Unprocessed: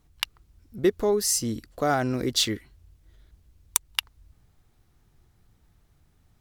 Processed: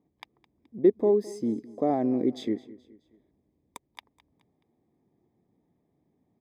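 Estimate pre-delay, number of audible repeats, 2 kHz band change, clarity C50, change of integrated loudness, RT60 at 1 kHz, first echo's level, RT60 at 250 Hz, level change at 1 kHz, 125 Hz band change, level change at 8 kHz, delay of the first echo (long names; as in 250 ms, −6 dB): no reverb audible, 3, −17.5 dB, no reverb audible, −0.5 dB, no reverb audible, −19.5 dB, no reverb audible, −5.0 dB, −7.5 dB, below −25 dB, 212 ms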